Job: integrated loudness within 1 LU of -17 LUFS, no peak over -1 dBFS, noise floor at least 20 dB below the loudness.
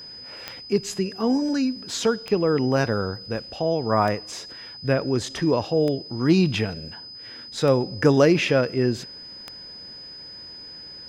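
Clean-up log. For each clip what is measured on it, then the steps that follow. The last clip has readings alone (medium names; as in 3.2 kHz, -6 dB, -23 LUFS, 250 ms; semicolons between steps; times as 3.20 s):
clicks found 6; steady tone 5 kHz; tone level -38 dBFS; loudness -23.0 LUFS; peak level -4.5 dBFS; loudness target -17.0 LUFS
-> de-click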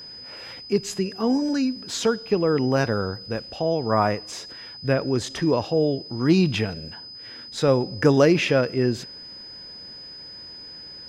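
clicks found 0; steady tone 5 kHz; tone level -38 dBFS
-> band-stop 5 kHz, Q 30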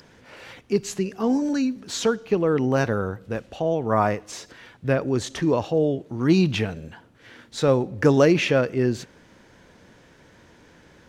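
steady tone not found; loudness -23.0 LUFS; peak level -4.5 dBFS; loudness target -17.0 LUFS
-> trim +6 dB; peak limiter -1 dBFS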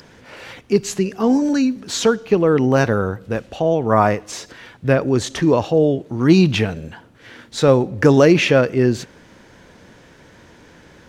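loudness -17.0 LUFS; peak level -1.0 dBFS; noise floor -48 dBFS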